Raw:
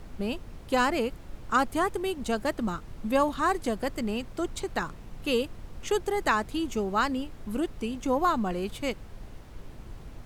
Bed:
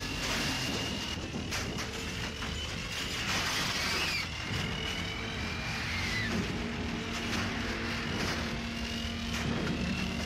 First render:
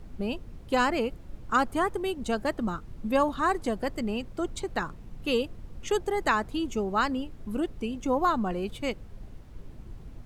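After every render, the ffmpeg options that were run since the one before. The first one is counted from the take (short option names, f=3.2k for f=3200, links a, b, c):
-af "afftdn=nr=7:nf=-45"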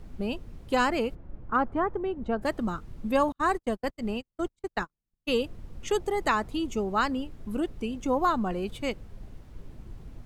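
-filter_complex "[0:a]asplit=3[a][b][c];[a]afade=t=out:st=1.14:d=0.02[d];[b]lowpass=1.5k,afade=t=in:st=1.14:d=0.02,afade=t=out:st=2.41:d=0.02[e];[c]afade=t=in:st=2.41:d=0.02[f];[d][e][f]amix=inputs=3:normalize=0,asettb=1/sr,asplit=3[g][h][i];[g]atrim=end=3.324[j];[h]atrim=start=3.32:end=5.3,asetpts=PTS-STARTPTS,afade=t=in:d=0.004:c=qsin,afade=t=out:st=1.976:d=0.004:c=qsin,agate=range=-46dB:threshold=-31dB:ratio=16:release=100:detection=peak[k];[i]atrim=start=5.296[l];[j][k]acrossfade=d=0.004:c1=hsin:c2=qsin[m];[m][l]acrossfade=d=0.004:c1=qsin:c2=hsin,asettb=1/sr,asplit=3[n][o][p];[n]atrim=end=5.934[q];[o]atrim=start=5.93:end=6.79,asetpts=PTS-STARTPTS,afade=t=in:d=0.004:c=qsin,afade=t=out:st=0.856:d=0.004:c=qsin,bandreject=f=1.6k:w=12[r];[p]atrim=start=6.786[s];[q][r]acrossfade=d=0.004:c1=hsin:c2=qsin[t];[t][s]acrossfade=d=0.004:c1=qsin:c2=hsin"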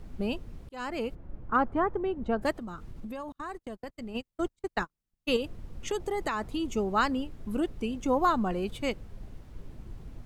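-filter_complex "[0:a]asplit=3[a][b][c];[a]afade=t=out:st=2.51:d=0.02[d];[b]acompressor=threshold=-36dB:ratio=6:attack=3.2:release=140:knee=1:detection=peak,afade=t=in:st=2.51:d=0.02,afade=t=out:st=4.14:d=0.02[e];[c]afade=t=in:st=4.14:d=0.02[f];[d][e][f]amix=inputs=3:normalize=0,asettb=1/sr,asplit=3[g][h][i];[g]atrim=end=5.364[j];[h]atrim=start=5.36:end=6.72,asetpts=PTS-STARTPTS,afade=t=in:d=0.004:c=qsin,afade=t=out:st=1.356:d=0.004:c=qsin,acompressor=threshold=-26dB:ratio=6:attack=3.2:release=140:knee=1:detection=peak[k];[i]atrim=start=6.716[l];[j][k]acrossfade=d=0.004:c1=hsin:c2=qsin[m];[m][l]acrossfade=d=0.004:c1=qsin:c2=hsin,asplit=2[n][o];[n]atrim=end=0.69,asetpts=PTS-STARTPTS,afade=t=out:st=0.686:d=0.004:c=hsin[p];[o]atrim=start=0.69,asetpts=PTS-STARTPTS,afade=t=in:d=0.55[q];[p][q]concat=n=2:v=0:a=1"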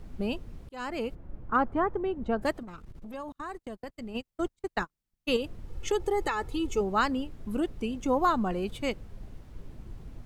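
-filter_complex "[0:a]asettb=1/sr,asplit=3[a][b][c];[a]atrim=end=2.634[d];[b]atrim=start=2.63:end=3.14,asetpts=PTS-STARTPTS,afade=t=in:d=0.004:c=qsin,afade=t=out:st=0.506:d=0.004:c=qsin,aeval=exprs='(tanh(89.1*val(0)+0.5)-tanh(0.5))/89.1':c=same[e];[c]atrim=start=3.136[f];[d][e]acrossfade=d=0.004:c1=hsin:c2=qsin[g];[g][f]acrossfade=d=0.004:c1=qsin:c2=hsin,asettb=1/sr,asplit=3[h][i][j];[h]atrim=end=5.684[k];[i]atrim=start=5.68:end=6.81,asetpts=PTS-STARTPTS,afade=t=in:d=0.004:c=qsin,afade=t=out:st=1.126:d=0.004:c=qsin,aecho=1:1:2.3:0.65,atrim=end_sample=49833[l];[j]atrim=start=6.806[m];[k][l]acrossfade=d=0.004:c1=hsin:c2=qsin[n];[n][m]acrossfade=d=0.004:c1=qsin:c2=hsin"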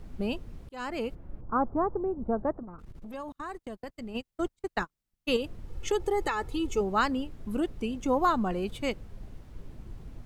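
-filter_complex "[0:a]asettb=1/sr,asplit=3[a][b][c];[a]atrim=end=1.414[d];[b]atrim=start=1.41:end=2.79,asetpts=PTS-STARTPTS,afade=t=in:d=0.004:c=qsin,afade=t=out:st=1.376:d=0.004:c=qsin,lowpass=f=1.2k:w=0.5412,lowpass=f=1.2k:w=1.3066[e];[c]atrim=start=2.786[f];[d][e]acrossfade=d=0.004:c1=hsin:c2=qsin[g];[g][f]acrossfade=d=0.004:c1=qsin:c2=hsin"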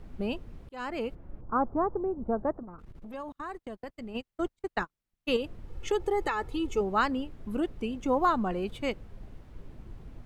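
-af "bass=f=250:g=-2,treble=f=4k:g=-6"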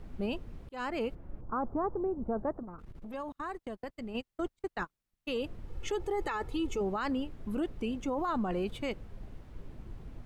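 -af "alimiter=level_in=1.5dB:limit=-24dB:level=0:latency=1:release=13,volume=-1.5dB,areverse,acompressor=mode=upward:threshold=-52dB:ratio=2.5,areverse"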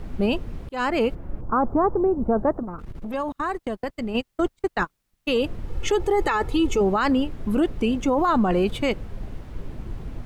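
-af "volume=12dB"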